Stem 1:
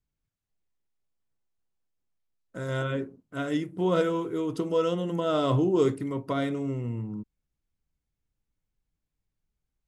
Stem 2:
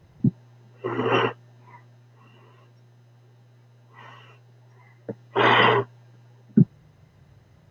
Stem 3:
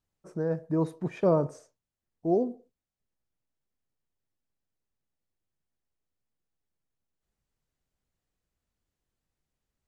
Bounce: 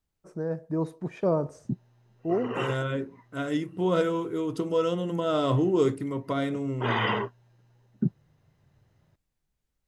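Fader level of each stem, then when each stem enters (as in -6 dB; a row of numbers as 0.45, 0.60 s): 0.0, -10.0, -1.5 dB; 0.00, 1.45, 0.00 s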